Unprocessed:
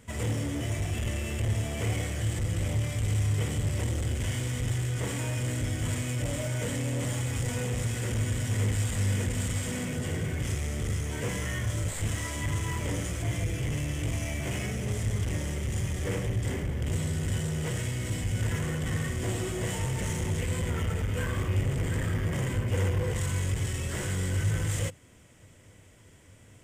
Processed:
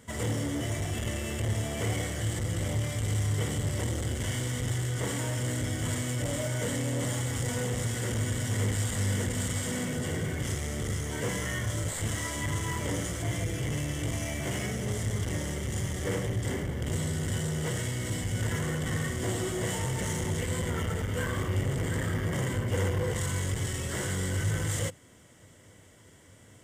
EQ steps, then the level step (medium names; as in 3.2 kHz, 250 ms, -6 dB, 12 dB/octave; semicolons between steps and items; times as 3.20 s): bass shelf 74 Hz -11.5 dB; band-stop 2.5 kHz, Q 6; +2.0 dB